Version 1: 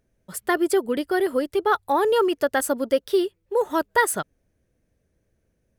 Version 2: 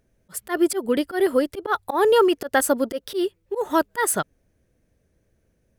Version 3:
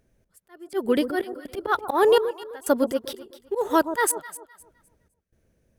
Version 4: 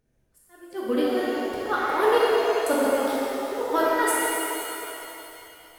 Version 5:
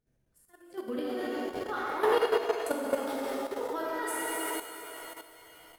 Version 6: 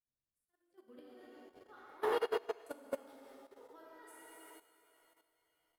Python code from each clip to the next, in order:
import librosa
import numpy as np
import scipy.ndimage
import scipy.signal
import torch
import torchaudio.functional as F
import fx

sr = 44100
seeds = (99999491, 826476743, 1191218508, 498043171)

y1 = fx.auto_swell(x, sr, attack_ms=113.0)
y1 = y1 * 10.0 ** (3.5 / 20.0)
y2 = fx.step_gate(y1, sr, bpm=62, pattern='x..xx.xx', floor_db=-24.0, edge_ms=4.5)
y2 = fx.echo_alternate(y2, sr, ms=128, hz=990.0, feedback_pct=50, wet_db=-9.5)
y3 = fx.transient(y2, sr, attack_db=3, sustain_db=-4)
y3 = fx.rev_shimmer(y3, sr, seeds[0], rt60_s=3.0, semitones=7, shimmer_db=-8, drr_db=-7.0)
y3 = y3 * 10.0 ** (-8.5 / 20.0)
y4 = fx.peak_eq(y3, sr, hz=150.0, db=3.5, octaves=1.2)
y4 = fx.level_steps(y4, sr, step_db=10)
y4 = y4 * 10.0 ** (-3.5 / 20.0)
y5 = fx.upward_expand(y4, sr, threshold_db=-36.0, expansion=2.5)
y5 = y5 * 10.0 ** (-7.0 / 20.0)